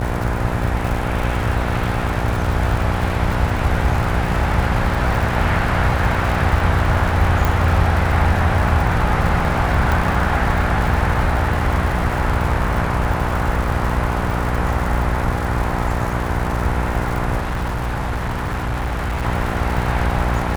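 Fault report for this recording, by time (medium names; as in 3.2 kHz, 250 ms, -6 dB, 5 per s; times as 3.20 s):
buzz 60 Hz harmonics 17 -23 dBFS
crackle 150 per s -24 dBFS
7.45 s: pop
9.92 s: pop
17.40–19.25 s: clipped -18.5 dBFS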